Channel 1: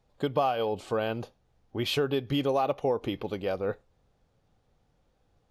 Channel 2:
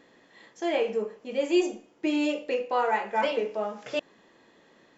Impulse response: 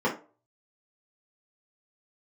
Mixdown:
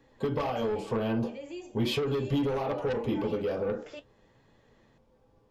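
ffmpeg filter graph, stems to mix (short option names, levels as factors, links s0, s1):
-filter_complex "[0:a]volume=0.841,asplit=2[s0][s1];[s1]volume=0.422[s2];[1:a]acompressor=threshold=0.0158:ratio=2,flanger=delay=3.5:depth=8.6:regen=57:speed=0.66:shape=sinusoidal,volume=0.631[s3];[2:a]atrim=start_sample=2205[s4];[s2][s4]afir=irnorm=-1:irlink=0[s5];[s0][s3][s5]amix=inputs=3:normalize=0,asoftclip=type=tanh:threshold=0.119,acrossover=split=190|3000[s6][s7][s8];[s7]acompressor=threshold=0.0398:ratio=6[s9];[s6][s9][s8]amix=inputs=3:normalize=0"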